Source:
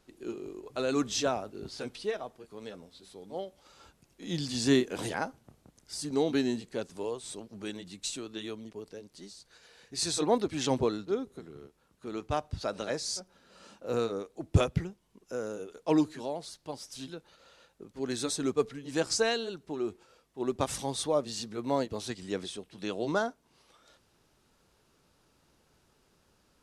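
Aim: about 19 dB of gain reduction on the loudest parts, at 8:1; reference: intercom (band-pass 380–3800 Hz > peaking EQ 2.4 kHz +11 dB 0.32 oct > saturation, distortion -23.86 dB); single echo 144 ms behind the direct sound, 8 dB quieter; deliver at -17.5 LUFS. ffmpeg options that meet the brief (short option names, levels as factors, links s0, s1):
-af "acompressor=threshold=0.0112:ratio=8,highpass=380,lowpass=3800,equalizer=f=2400:t=o:w=0.32:g=11,aecho=1:1:144:0.398,asoftclip=threshold=0.0266,volume=29.9"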